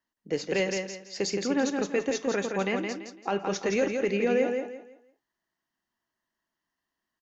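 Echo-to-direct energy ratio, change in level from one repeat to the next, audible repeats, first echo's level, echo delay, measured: -4.5 dB, -10.5 dB, 3, -5.0 dB, 0.168 s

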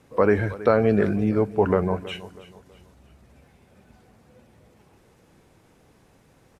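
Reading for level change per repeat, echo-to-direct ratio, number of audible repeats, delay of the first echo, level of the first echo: -8.0 dB, -17.0 dB, 3, 0.323 s, -17.5 dB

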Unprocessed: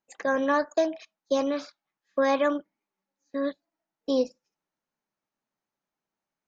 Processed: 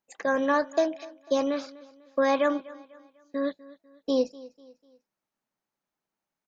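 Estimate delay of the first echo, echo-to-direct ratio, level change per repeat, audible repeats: 0.248 s, -19.5 dB, -8.0 dB, 2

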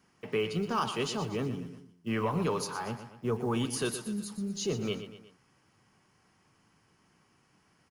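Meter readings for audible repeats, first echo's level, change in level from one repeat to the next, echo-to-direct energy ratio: 3, -11.0 dB, -6.0 dB, -10.0 dB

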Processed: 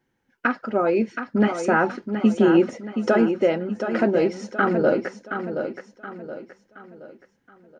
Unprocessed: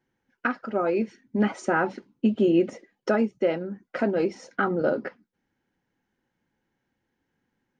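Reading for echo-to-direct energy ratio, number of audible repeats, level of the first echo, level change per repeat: -7.0 dB, 4, -8.0 dB, -8.0 dB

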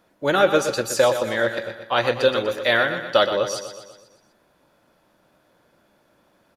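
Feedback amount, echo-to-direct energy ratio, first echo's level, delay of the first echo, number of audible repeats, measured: 54%, -8.0 dB, -9.5 dB, 0.122 s, 5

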